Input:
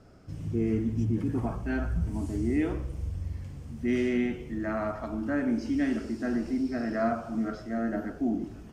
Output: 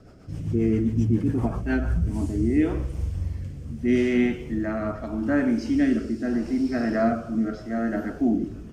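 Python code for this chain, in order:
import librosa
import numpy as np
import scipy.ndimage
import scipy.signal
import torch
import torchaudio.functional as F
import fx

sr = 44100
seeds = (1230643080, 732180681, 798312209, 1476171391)

y = fx.rotary_switch(x, sr, hz=7.5, then_hz=0.8, switch_at_s=1.49)
y = y * librosa.db_to_amplitude(7.0)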